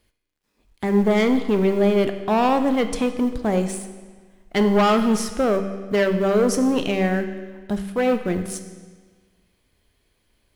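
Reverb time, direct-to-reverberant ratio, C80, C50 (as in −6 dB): 1.5 s, 7.5 dB, 11.0 dB, 9.5 dB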